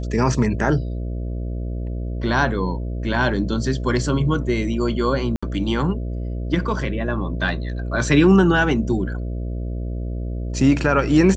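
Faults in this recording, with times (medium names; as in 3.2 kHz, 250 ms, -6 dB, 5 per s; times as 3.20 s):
buzz 60 Hz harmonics 11 -26 dBFS
5.36–5.42 s: dropout 65 ms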